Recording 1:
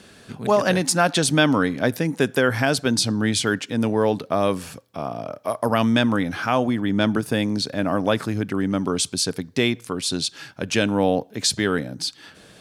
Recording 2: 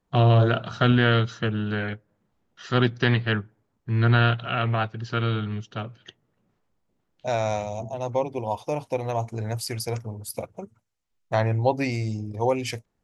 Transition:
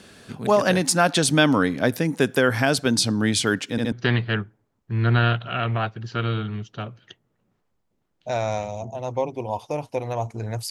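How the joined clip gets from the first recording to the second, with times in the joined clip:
recording 1
3.71 s: stutter in place 0.07 s, 3 plays
3.92 s: go over to recording 2 from 2.90 s

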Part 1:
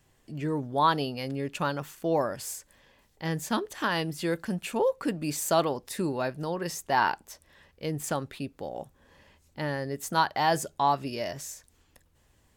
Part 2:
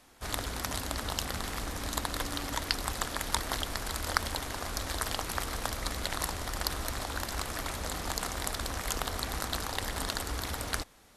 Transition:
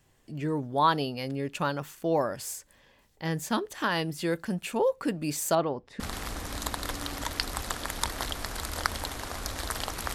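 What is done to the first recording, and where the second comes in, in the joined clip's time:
part 1
5.55–6.00 s: tape spacing loss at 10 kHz 29 dB
6.00 s: go over to part 2 from 1.31 s

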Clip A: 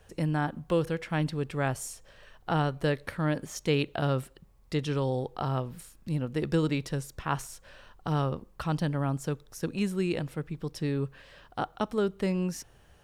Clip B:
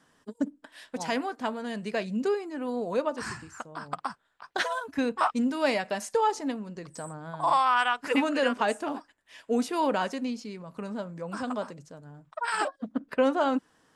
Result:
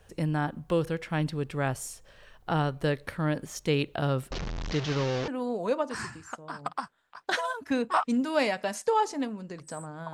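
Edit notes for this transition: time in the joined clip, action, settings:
clip A
4.31–5.28 s: one-bit delta coder 32 kbps, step -27 dBFS
5.28 s: go over to clip B from 2.55 s

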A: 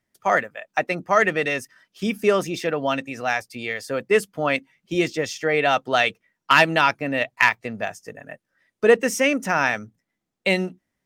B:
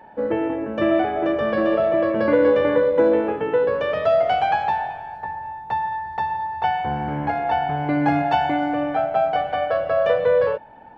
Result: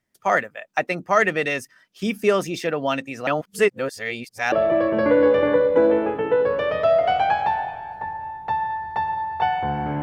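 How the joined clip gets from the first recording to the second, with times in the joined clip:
A
3.27–4.52 s: reverse
4.52 s: go over to B from 1.74 s

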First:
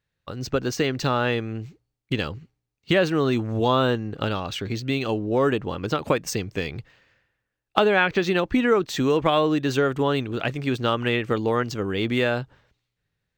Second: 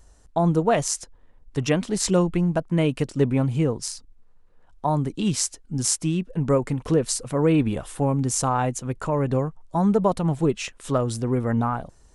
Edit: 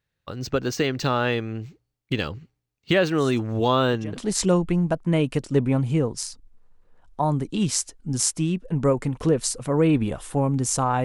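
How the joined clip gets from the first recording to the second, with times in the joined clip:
first
3.18 s: add second from 0.83 s 0.99 s -18 dB
4.17 s: go over to second from 1.82 s

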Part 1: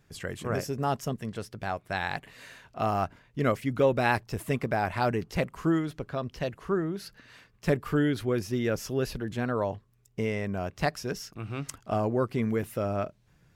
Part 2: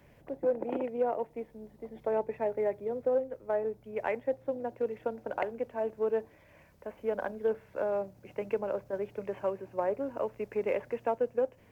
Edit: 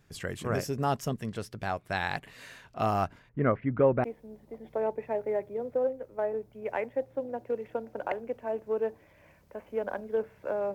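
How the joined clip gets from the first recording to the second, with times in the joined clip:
part 1
3.29–4.04 s: low-pass 1.9 kHz 24 dB/octave
4.04 s: go over to part 2 from 1.35 s

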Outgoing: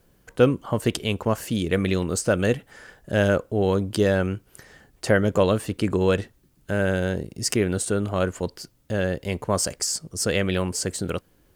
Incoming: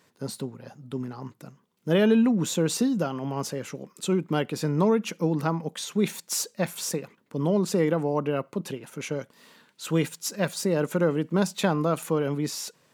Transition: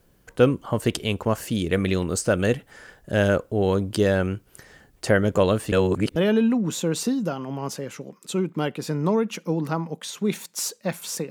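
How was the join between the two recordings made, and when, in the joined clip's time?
outgoing
5.72–6.16 s: reverse
6.16 s: go over to incoming from 1.90 s

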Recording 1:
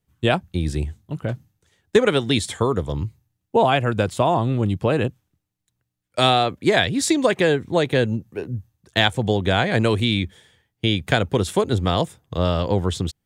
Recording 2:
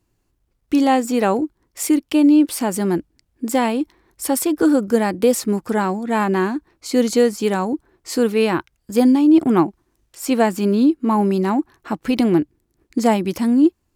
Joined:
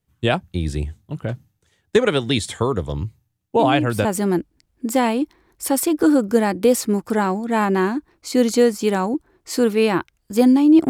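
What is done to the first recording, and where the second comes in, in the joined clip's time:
recording 1
3.59 s: add recording 2 from 2.18 s 0.46 s -10 dB
4.05 s: go over to recording 2 from 2.64 s

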